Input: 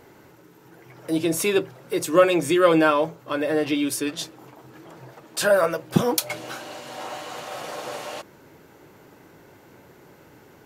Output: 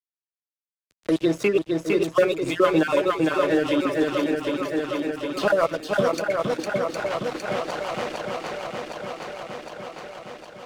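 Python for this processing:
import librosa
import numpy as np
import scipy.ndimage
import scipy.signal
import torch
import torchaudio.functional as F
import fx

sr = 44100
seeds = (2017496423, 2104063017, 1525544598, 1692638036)

p1 = fx.spec_dropout(x, sr, seeds[0], share_pct=33)
p2 = scipy.signal.sosfilt(scipy.signal.butter(2, 4400.0, 'lowpass', fs=sr, output='sos'), p1)
p3 = fx.hum_notches(p2, sr, base_hz=60, count=5)
p4 = np.sign(p3) * np.maximum(np.abs(p3) - 10.0 ** (-38.0 / 20.0), 0.0)
p5 = fx.rotary(p4, sr, hz=6.7)
p6 = p5 + fx.echo_swing(p5, sr, ms=761, ratio=1.5, feedback_pct=43, wet_db=-5.0, dry=0)
p7 = fx.band_squash(p6, sr, depth_pct=70)
y = p7 * 10.0 ** (4.5 / 20.0)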